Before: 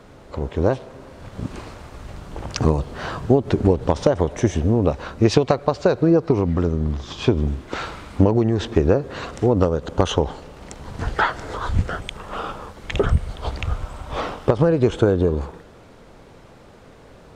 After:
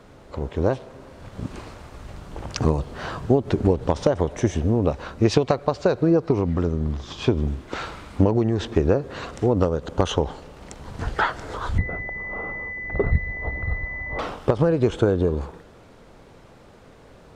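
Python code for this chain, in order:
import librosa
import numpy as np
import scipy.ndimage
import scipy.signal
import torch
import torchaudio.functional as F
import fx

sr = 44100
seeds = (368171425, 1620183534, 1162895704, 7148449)

y = fx.pwm(x, sr, carrier_hz=2000.0, at=(11.78, 14.19))
y = y * librosa.db_to_amplitude(-2.5)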